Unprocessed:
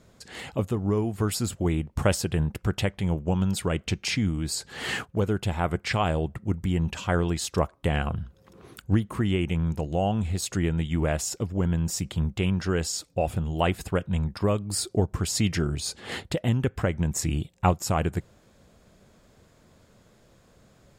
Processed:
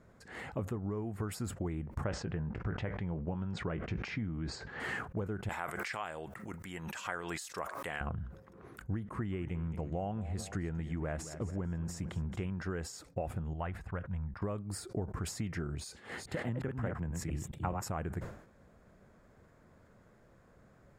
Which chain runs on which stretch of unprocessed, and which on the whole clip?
0:02.04–0:04.80: Bessel low-pass filter 4,000 Hz, order 8 + double-tracking delay 18 ms −13 dB + level that may fall only so fast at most 70 dB per second
0:05.49–0:08.01: high-pass filter 1,200 Hz 6 dB per octave + high-shelf EQ 3,300 Hz +10.5 dB + background raised ahead of every attack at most 67 dB per second
0:09.00–0:12.53: low-pass filter 11,000 Hz + repeating echo 221 ms, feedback 47%, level −17 dB
0:13.53–0:14.42: low-pass filter 1,300 Hz 6 dB per octave + parametric band 340 Hz −12 dB 2.2 octaves
0:15.84–0:17.85: delay that plays each chunk backwards 209 ms, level −3 dB + multiband upward and downward expander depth 40%
whole clip: downward compressor, threshold −29 dBFS; high shelf with overshoot 2,400 Hz −9 dB, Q 1.5; level that may fall only so fast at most 94 dB per second; level −4.5 dB

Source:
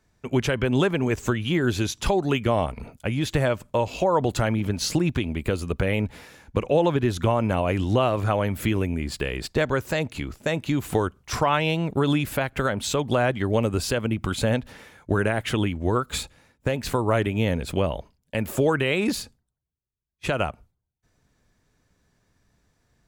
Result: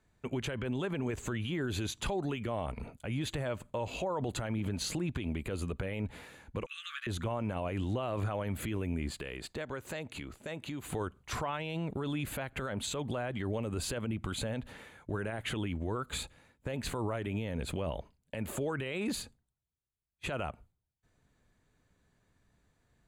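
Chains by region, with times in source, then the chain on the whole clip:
0:06.66–0:07.07: linear-phase brick-wall high-pass 1,100 Hz + double-tracking delay 15 ms −8 dB
0:09.10–0:10.88: downward compressor 3 to 1, threshold −32 dBFS + low-shelf EQ 150 Hz −6.5 dB
whole clip: low-pass filter 12,000 Hz 12 dB per octave; parametric band 5,400 Hz −14 dB 0.22 octaves; brickwall limiter −21.5 dBFS; level −4.5 dB

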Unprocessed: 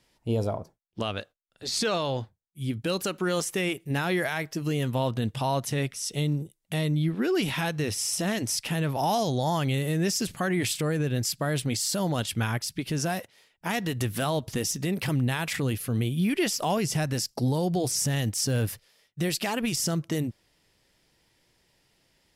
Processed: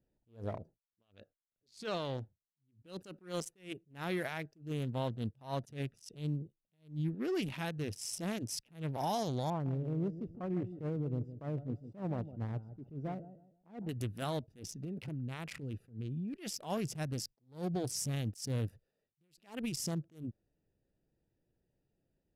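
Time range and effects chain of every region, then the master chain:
0:09.50–0:13.89: Savitzky-Golay smoothing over 65 samples + repeating echo 158 ms, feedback 27%, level −11.5 dB
0:14.59–0:16.34: high-shelf EQ 11,000 Hz −7.5 dB + downward compressor 16 to 1, threshold −26 dBFS
whole clip: adaptive Wiener filter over 41 samples; level that may rise only so fast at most 190 dB per second; level −8 dB

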